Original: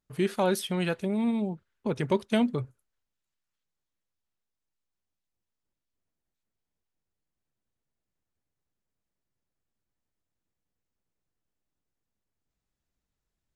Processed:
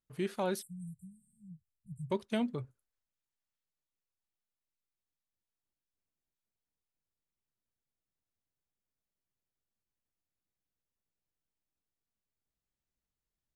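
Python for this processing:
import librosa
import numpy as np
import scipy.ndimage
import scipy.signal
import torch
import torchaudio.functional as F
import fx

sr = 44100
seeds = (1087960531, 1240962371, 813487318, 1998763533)

y = fx.brickwall_bandstop(x, sr, low_hz=180.0, high_hz=7200.0, at=(0.61, 2.1), fade=0.02)
y = y * librosa.db_to_amplitude(-8.0)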